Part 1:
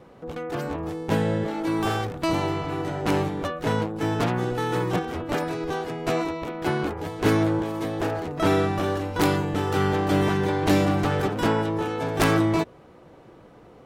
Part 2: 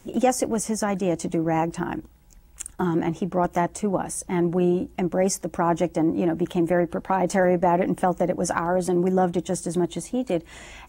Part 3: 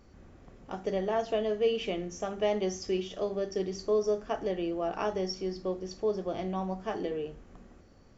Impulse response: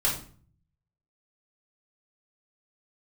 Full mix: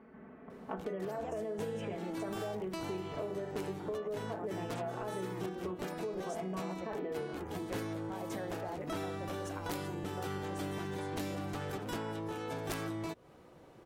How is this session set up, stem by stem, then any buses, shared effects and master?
-8.0 dB, 0.50 s, no bus, no send, treble shelf 5.1 kHz +8.5 dB
-16.5 dB, 1.00 s, bus A, no send, none
+2.5 dB, 0.00 s, bus A, no send, low-pass 2.2 kHz 24 dB/octave; comb 4.6 ms, depth 96%
bus A: 0.0 dB, high-pass 190 Hz 12 dB/octave; peak limiter -21.5 dBFS, peak gain reduction 11.5 dB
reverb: none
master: compression 6:1, threshold -36 dBFS, peak gain reduction 13.5 dB

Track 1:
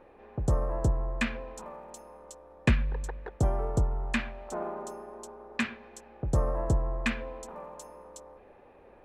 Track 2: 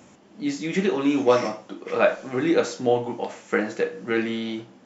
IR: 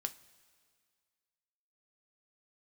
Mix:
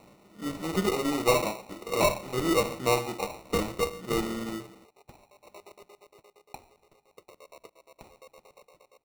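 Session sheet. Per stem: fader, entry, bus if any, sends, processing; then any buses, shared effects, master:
-15.0 dB, 0.95 s, send -9.5 dB, compression 12:1, threshold -31 dBFS, peak gain reduction 14 dB; LFO high-pass square 8.6 Hz 430–2300 Hz
+2.5 dB, 0.00 s, no send, feedback comb 66 Hz, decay 1.8 s, mix 40%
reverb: on, pre-delay 3 ms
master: valve stage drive 13 dB, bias 0.4; peaking EQ 260 Hz -8 dB 0.34 oct; sample-and-hold 27×

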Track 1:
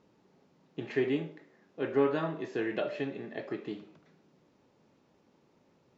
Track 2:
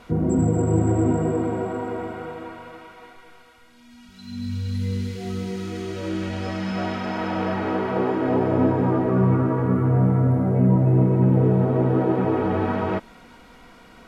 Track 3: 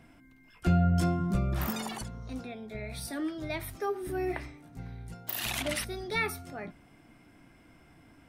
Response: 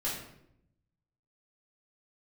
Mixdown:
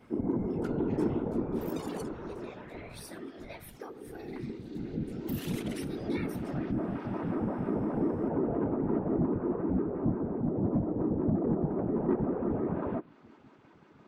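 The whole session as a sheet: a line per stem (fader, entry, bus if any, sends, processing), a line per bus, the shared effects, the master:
-12.0 dB, 0.00 s, no send, high-pass 800 Hz; peak limiter -36 dBFS, peak gain reduction 11.5 dB
-7.0 dB, 0.00 s, no send, vocoder on a broken chord bare fifth, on G#3, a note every 88 ms; low-pass that closes with the level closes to 1.5 kHz, closed at -19.5 dBFS; saturation -17 dBFS, distortion -14 dB
-5.5 dB, 0.00 s, no send, compression 5:1, threshold -36 dBFS, peak gain reduction 14 dB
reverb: none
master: whisper effect

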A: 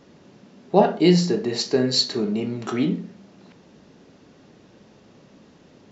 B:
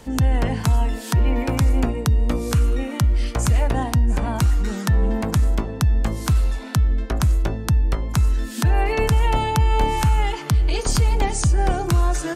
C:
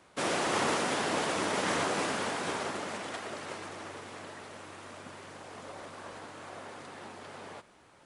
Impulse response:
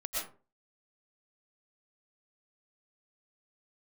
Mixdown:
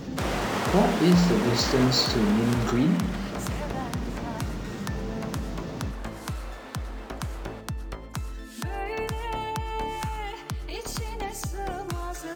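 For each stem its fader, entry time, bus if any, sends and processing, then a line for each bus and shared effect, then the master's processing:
-10.5 dB, 0.00 s, no send, tone controls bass +11 dB, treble +5 dB; level flattener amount 50%
-9.0 dB, 0.00 s, send -18 dB, bass shelf 120 Hz -12 dB
-1.0 dB, 0.00 s, send -13.5 dB, median filter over 3 samples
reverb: on, RT60 0.35 s, pre-delay 80 ms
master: decimation joined by straight lines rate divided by 2×

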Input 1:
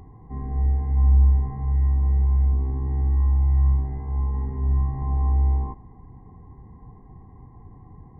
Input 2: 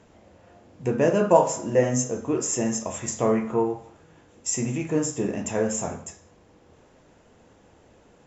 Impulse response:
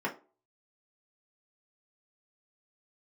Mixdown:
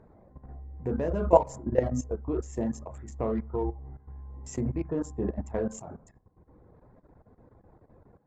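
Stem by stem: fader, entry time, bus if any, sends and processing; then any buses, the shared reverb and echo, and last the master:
-13.0 dB, 0.00 s, no send, none
+1.5 dB, 0.00 s, no send, local Wiener filter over 15 samples; reverb removal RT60 0.92 s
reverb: none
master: low-pass 1.7 kHz 6 dB/octave; level held to a coarse grid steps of 14 dB

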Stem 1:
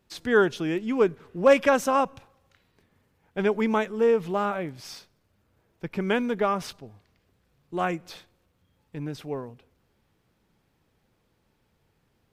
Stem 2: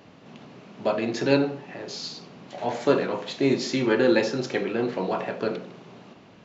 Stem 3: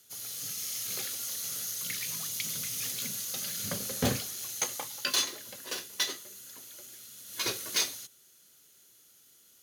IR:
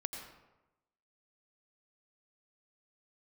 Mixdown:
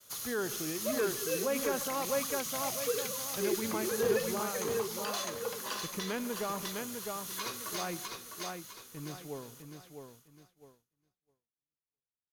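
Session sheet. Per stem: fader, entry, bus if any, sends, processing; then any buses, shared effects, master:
-11.5 dB, 0.00 s, bus A, send -11 dB, echo send -4.5 dB, none
-13.5 dB, 0.00 s, no bus, no send, no echo send, formants replaced by sine waves
+3.0 dB, 0.00 s, bus A, send -17.5 dB, echo send -6 dB, peaking EQ 1.1 kHz +12.5 dB 0.6 oct; compression 2.5:1, threshold -43 dBFS, peak gain reduction 14 dB
bus A: 0.0 dB, peak limiter -28.5 dBFS, peak gain reduction 10 dB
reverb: on, RT60 1.0 s, pre-delay 80 ms
echo: feedback delay 655 ms, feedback 36%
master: expander -54 dBFS

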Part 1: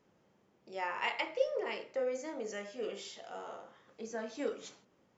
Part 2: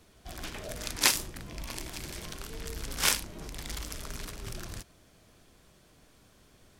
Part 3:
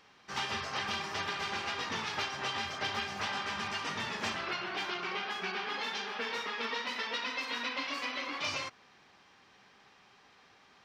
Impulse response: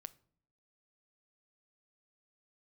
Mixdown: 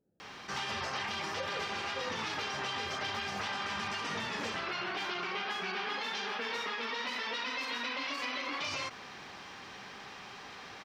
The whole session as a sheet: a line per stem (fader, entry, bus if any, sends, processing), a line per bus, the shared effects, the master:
-5.5 dB, 0.00 s, no send, local Wiener filter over 41 samples
mute
-1.0 dB, 0.20 s, no send, level flattener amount 50%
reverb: none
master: peak limiter -27 dBFS, peak gain reduction 7 dB

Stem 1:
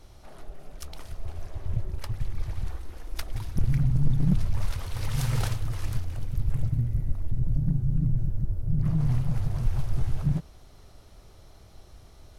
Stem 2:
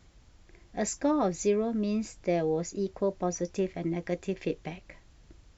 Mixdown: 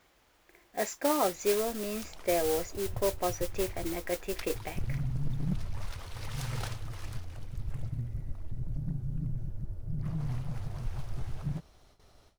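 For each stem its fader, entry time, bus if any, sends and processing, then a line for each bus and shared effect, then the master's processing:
-4.0 dB, 1.20 s, no send, median filter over 3 samples; gate with hold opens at -41 dBFS
+2.5 dB, 0.00 s, no send, tone controls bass -13 dB, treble -10 dB; modulation noise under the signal 11 dB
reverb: none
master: bass shelf 280 Hz -6.5 dB

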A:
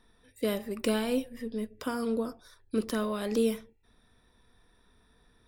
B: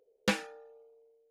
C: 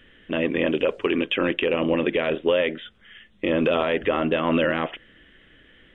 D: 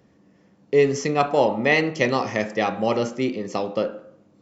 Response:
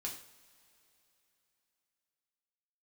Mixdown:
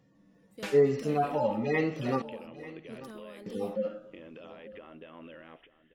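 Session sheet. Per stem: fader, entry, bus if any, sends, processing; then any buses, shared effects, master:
-17.0 dB, 0.15 s, no send, no echo send, none
-1.0 dB, 0.35 s, no send, no echo send, tremolo of two beating tones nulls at 2.1 Hz
-19.0 dB, 0.70 s, no send, echo send -17 dB, compression 4:1, threshold -27 dBFS, peak gain reduction 9.5 dB
-5.0 dB, 0.00 s, muted 2.22–3.46 s, no send, echo send -17.5 dB, harmonic-percussive separation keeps harmonic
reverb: none
echo: delay 891 ms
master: none

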